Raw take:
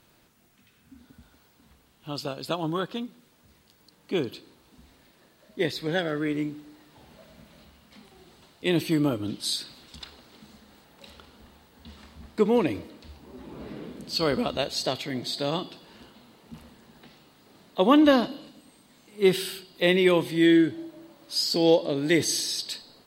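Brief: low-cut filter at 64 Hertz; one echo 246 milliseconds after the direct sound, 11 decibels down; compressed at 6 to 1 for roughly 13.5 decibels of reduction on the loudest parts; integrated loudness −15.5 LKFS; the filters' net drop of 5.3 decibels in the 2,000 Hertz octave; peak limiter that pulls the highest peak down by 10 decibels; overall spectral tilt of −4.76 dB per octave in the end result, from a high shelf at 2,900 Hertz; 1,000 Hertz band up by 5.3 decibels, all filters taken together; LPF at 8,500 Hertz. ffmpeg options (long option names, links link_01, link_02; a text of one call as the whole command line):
ffmpeg -i in.wav -af "highpass=64,lowpass=8500,equalizer=frequency=1000:width_type=o:gain=9,equalizer=frequency=2000:width_type=o:gain=-6.5,highshelf=frequency=2900:gain=-7,acompressor=threshold=-27dB:ratio=6,alimiter=level_in=1dB:limit=-24dB:level=0:latency=1,volume=-1dB,aecho=1:1:246:0.282,volume=21dB" out.wav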